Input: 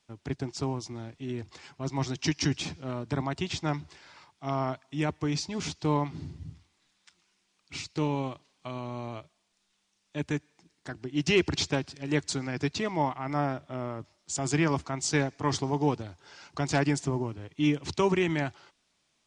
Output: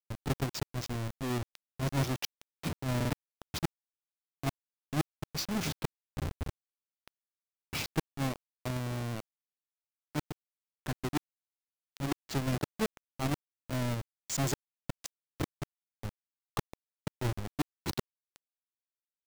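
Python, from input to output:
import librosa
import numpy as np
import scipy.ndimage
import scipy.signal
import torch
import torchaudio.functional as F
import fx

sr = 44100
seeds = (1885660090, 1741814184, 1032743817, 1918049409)

p1 = fx.halfwave_hold(x, sr)
p2 = fx.gate_flip(p1, sr, shuts_db=-19.0, range_db=-31)
p3 = fx.quant_dither(p2, sr, seeds[0], bits=6, dither='none')
p4 = fx.rider(p3, sr, range_db=4, speed_s=0.5)
p5 = p3 + (p4 * 10.0 ** (-2.5 / 20.0))
p6 = fx.buffer_glitch(p5, sr, at_s=(2.96,), block=2048, repeats=2)
y = p6 * 10.0 ** (-8.0 / 20.0)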